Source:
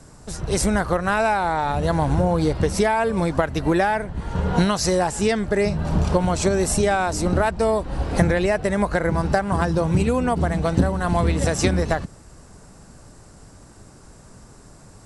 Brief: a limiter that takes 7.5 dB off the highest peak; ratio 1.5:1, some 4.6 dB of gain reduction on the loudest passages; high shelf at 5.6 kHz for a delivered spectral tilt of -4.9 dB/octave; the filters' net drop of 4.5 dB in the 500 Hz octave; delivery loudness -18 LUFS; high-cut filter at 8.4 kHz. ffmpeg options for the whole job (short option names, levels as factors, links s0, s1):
-af "lowpass=8400,equalizer=f=500:t=o:g=-6,highshelf=f=5600:g=7,acompressor=threshold=0.0447:ratio=1.5,volume=3.16,alimiter=limit=0.422:level=0:latency=1"